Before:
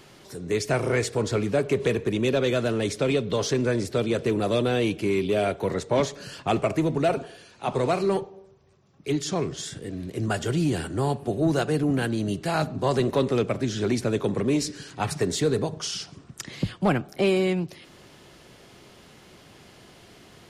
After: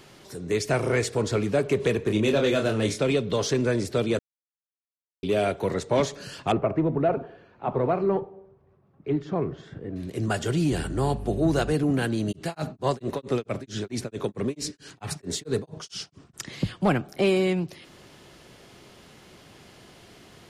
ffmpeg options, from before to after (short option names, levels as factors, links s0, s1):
-filter_complex "[0:a]asettb=1/sr,asplit=3[s0][s1][s2];[s0]atrim=end=2.054[s3];[s1]atrim=start=2.05:end=3.03,asetpts=PTS-STARTPTS,afade=t=in:d=0.004:c=qsin,afade=t=out:st=0.976:d=0.004:c=qsin,asplit=2[s4][s5];[s5]adelay=28,volume=0.562[s6];[s4][s6]amix=inputs=2:normalize=0,atrim=end_sample=43218[s7];[s2]atrim=start=3.026[s8];[s3][s7]acrossfade=d=0.004:c1=hsin:c2=qsin[s9];[s9][s8]acrossfade=d=0.004:c1=qsin:c2=hsin,asettb=1/sr,asplit=3[s10][s11][s12];[s10]atrim=end=6.524[s13];[s11]atrim=start=6.52:end=9.96,asetpts=PTS-STARTPTS,afade=t=in:d=0.004:c=qsin,afade=t=out:st=3.436:d=0.004:c=qsin,lowpass=1400[s14];[s12]atrim=start=9.956[s15];[s13][s14]acrossfade=d=0.004:c1=hsin:c2=qsin[s16];[s16][s15]acrossfade=d=0.004:c1=qsin:c2=hsin,asettb=1/sr,asplit=3[s17][s18][s19];[s17]atrim=end=10.724[s20];[s18]atrim=start=10.72:end=11.73,asetpts=PTS-STARTPTS,afade=t=in:d=0.004:c=qsin,afade=t=out:st=1.006:d=0.004:c=qsin,aeval=exprs='val(0)+0.0224*(sin(2*PI*50*n/s)+sin(2*PI*2*50*n/s)/2+sin(2*PI*3*50*n/s)/3+sin(2*PI*4*50*n/s)/4+sin(2*PI*5*50*n/s)/5)':c=same[s21];[s19]atrim=start=11.726[s22];[s20][s21]acrossfade=d=0.004:c1=hsin:c2=qsin[s23];[s23][s22]acrossfade=d=0.004:c1=qsin:c2=hsin,asplit=3[s24][s25][s26];[s24]afade=t=out:st=12.31:d=0.02[s27];[s25]tremolo=f=4.5:d=1,afade=t=in:st=12.31:d=0.02,afade=t=out:st=16.33:d=0.02[s28];[s26]afade=t=in:st=16.33:d=0.02[s29];[s27][s28][s29]amix=inputs=3:normalize=0,asplit=3[s30][s31][s32];[s30]atrim=end=4.19,asetpts=PTS-STARTPTS,afade=t=out:st=4.186:d=0.004:c=hsin[s33];[s31]atrim=start=4.19:end=5.23,asetpts=PTS-STARTPTS,volume=0[s34];[s32]atrim=start=5.23,asetpts=PTS-STARTPTS,afade=t=in:d=0.004:c=hsin[s35];[s33][s34][s35]concat=n=3:v=0:a=1"